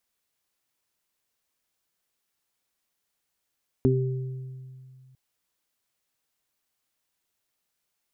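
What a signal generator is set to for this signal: additive tone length 1.30 s, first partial 130 Hz, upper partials 3/-0.5 dB, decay 2.39 s, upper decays 0.26/1.12 s, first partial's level -20 dB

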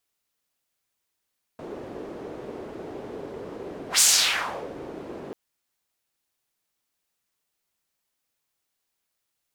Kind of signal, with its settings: whoosh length 3.74 s, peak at 2.41 s, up 0.11 s, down 0.75 s, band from 400 Hz, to 7.4 kHz, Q 2, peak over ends 21 dB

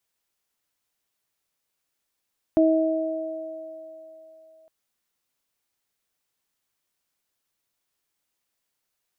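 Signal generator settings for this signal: additive tone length 2.11 s, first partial 320 Hz, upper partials -2.5 dB, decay 2.17 s, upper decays 3.68 s, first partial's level -15.5 dB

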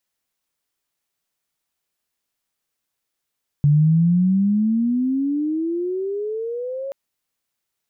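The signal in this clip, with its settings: gliding synth tone sine, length 3.28 s, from 143 Hz, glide +23.5 st, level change -14.5 dB, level -11 dB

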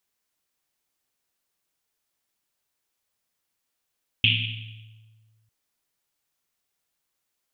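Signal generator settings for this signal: Risset drum length 1.25 s, pitch 110 Hz, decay 1.83 s, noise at 2.9 kHz, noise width 990 Hz, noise 60%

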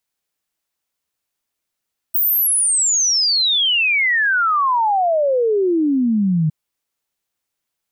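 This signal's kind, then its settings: log sweep 16 kHz -> 150 Hz 4.36 s -13.5 dBFS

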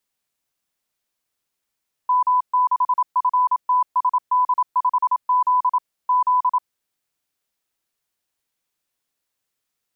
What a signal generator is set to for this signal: Morse "M6FTSD5Z Z" 27 wpm 999 Hz -14 dBFS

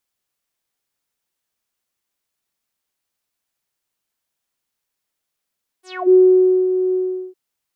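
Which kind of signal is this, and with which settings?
synth note saw F#4 12 dB/octave, low-pass 370 Hz, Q 9.8, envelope 5 oct, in 0.24 s, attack 306 ms, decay 0.54 s, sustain -9 dB, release 0.40 s, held 1.11 s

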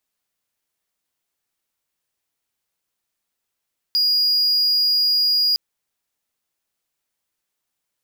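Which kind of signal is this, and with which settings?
tone triangle 4.87 kHz -13 dBFS 1.61 s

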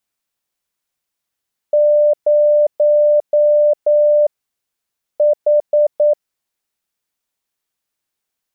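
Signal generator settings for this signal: Morse "0 H" 9 wpm 594 Hz -8.5 dBFS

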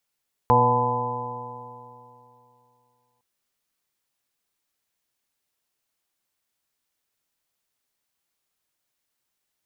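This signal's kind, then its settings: stretched partials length 2.71 s, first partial 121 Hz, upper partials -4/-14.5/2/-11/-4.5/4/5 dB, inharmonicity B 0.0012, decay 2.77 s, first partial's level -22 dB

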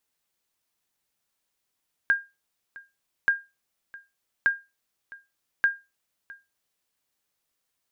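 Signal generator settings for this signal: sonar ping 1.61 kHz, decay 0.24 s, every 1.18 s, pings 4, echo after 0.66 s, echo -22 dB -13 dBFS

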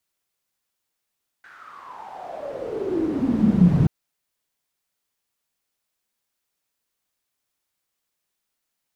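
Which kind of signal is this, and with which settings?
swept filtered noise pink, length 2.43 s bandpass, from 1.6 kHz, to 140 Hz, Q 8.3, exponential, gain ramp +34 dB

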